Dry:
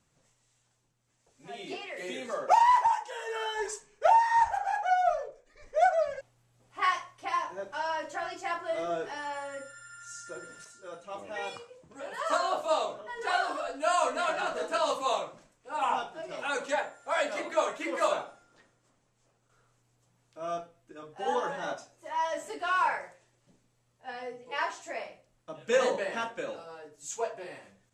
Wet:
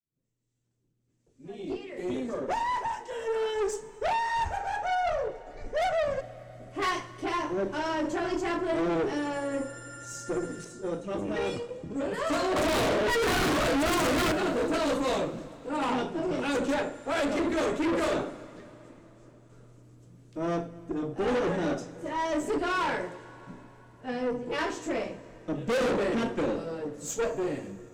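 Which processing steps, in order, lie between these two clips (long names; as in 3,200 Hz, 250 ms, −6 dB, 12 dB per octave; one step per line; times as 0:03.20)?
fade in at the beginning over 6.04 s
0:12.56–0:14.32: mid-hump overdrive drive 30 dB, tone 7,300 Hz, clips at −14.5 dBFS
low shelf with overshoot 520 Hz +14 dB, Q 1.5
tube saturation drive 30 dB, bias 0.45
dense smooth reverb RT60 4 s, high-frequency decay 0.8×, DRR 15.5 dB
level +5.5 dB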